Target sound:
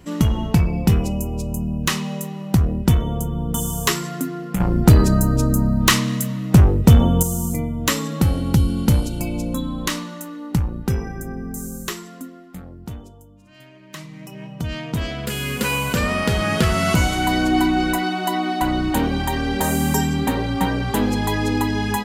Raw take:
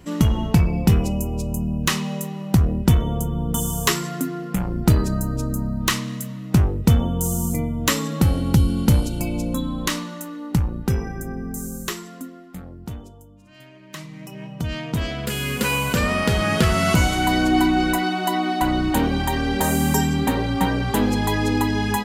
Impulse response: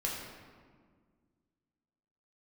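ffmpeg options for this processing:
-filter_complex "[0:a]asettb=1/sr,asplit=3[link_01][link_02][link_03];[link_01]atrim=end=4.604[link_04];[link_02]atrim=start=4.6:end=7.23,asetpts=PTS-STARTPTS,afade=type=in:duration=0.004:curve=qsin,afade=type=out:start_time=2.626:duration=0.004:curve=qsin,acontrast=82[link_05];[link_03]atrim=start=7.226[link_06];[link_04][link_05]acrossfade=duration=0.004:curve1=hsin:curve2=qsin[link_07];[link_07][link_06]acrossfade=duration=0.004:curve1=qsin:curve2=hsin"

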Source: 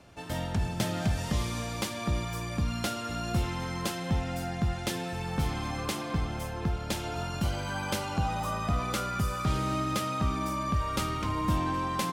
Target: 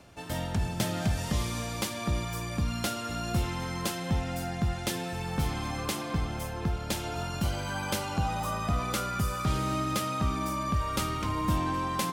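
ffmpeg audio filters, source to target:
ffmpeg -i in.wav -af "highshelf=frequency=8200:gain=5,areverse,acompressor=mode=upward:threshold=-43dB:ratio=2.5,areverse" out.wav

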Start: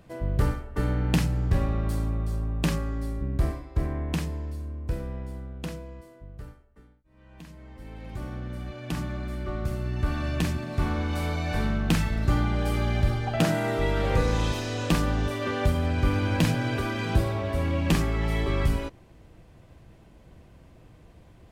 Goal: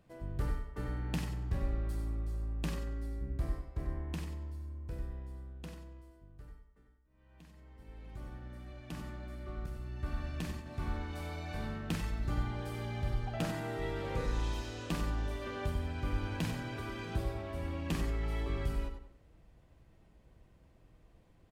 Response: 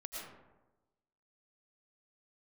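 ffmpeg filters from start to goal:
-filter_complex "[0:a]asettb=1/sr,asplit=3[link_01][link_02][link_03];[link_01]atrim=end=9.664[link_04];[link_02]atrim=start=9.66:end=10.66,asetpts=PTS-STARTPTS,afade=type=in:duration=0.004:curve=qsin,afade=type=out:start_time=0.996:duration=0.004:curve=qsin,agate=range=-33dB:threshold=-26dB:ratio=3:detection=peak[link_05];[link_03]atrim=start=10.656[link_06];[link_04][link_05]acrossfade=duration=0.004:curve1=hsin:curve2=qsin[link_07];[link_07][link_06]acrossfade=duration=0.004:curve1=qsin:curve2=hsin,asplit=2[link_08][link_09];[link_09]adelay=94,lowpass=frequency=3000:poles=1,volume=-9dB,asplit=2[link_10][link_11];[link_11]adelay=94,lowpass=frequency=3000:poles=1,volume=0.39,asplit=2[link_12][link_13];[link_13]adelay=94,lowpass=frequency=3000:poles=1,volume=0.39,asplit=2[link_14][link_15];[link_15]adelay=94,lowpass=frequency=3000:poles=1,volume=0.39[link_16];[link_08][link_10][link_12][link_14][link_16]amix=inputs=5:normalize=0[link_17];[1:a]atrim=start_sample=2205,atrim=end_sample=4410[link_18];[link_17][link_18]afir=irnorm=-1:irlink=0,volume=-6.5dB"

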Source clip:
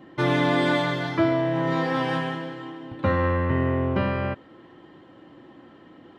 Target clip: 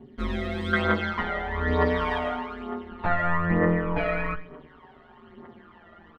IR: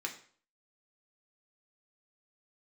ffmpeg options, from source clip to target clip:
-filter_complex "[0:a]highshelf=frequency=5100:gain=-9.5,asplit=2[link_01][link_02];[link_02]adelay=13,volume=-4dB[link_03];[link_01][link_03]amix=inputs=2:normalize=0,aecho=1:1:67|134|201|268|335:0.158|0.0856|0.0462|0.025|0.0135,aeval=exprs='val(0)*sin(2*PI*85*n/s)':channel_layout=same,aphaser=in_gain=1:out_gain=1:delay=1.6:decay=0.6:speed=1.1:type=triangular,asetnsamples=nb_out_samples=441:pad=0,asendcmd='0.73 equalizer g 8',equalizer=frequency=1300:width_type=o:width=2.1:gain=-7,asplit=2[link_04][link_05];[link_05]adelay=5,afreqshift=-0.4[link_06];[link_04][link_06]amix=inputs=2:normalize=1,volume=-1dB"

